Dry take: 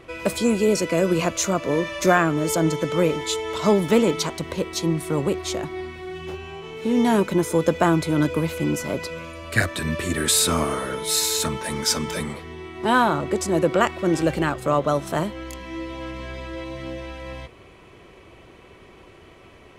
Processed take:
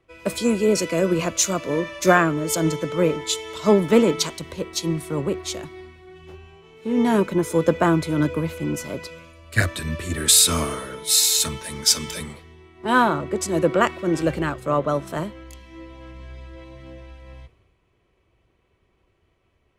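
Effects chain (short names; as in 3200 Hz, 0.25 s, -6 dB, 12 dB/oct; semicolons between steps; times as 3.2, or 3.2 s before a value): dynamic EQ 780 Hz, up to -5 dB, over -43 dBFS, Q 5.8; three-band expander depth 70%; gain -1 dB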